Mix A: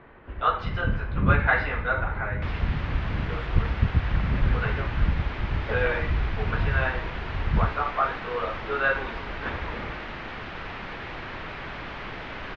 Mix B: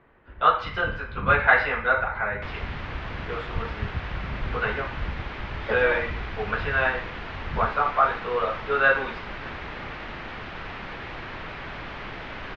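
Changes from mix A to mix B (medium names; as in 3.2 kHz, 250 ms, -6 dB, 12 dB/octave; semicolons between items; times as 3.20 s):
speech +4.5 dB; first sound -8.5 dB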